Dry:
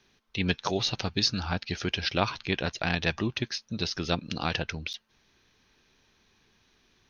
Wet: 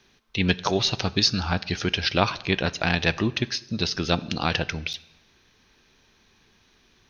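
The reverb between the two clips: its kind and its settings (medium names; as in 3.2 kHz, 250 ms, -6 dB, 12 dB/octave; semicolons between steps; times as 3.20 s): plate-style reverb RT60 1 s, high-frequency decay 0.85×, DRR 17 dB; trim +5 dB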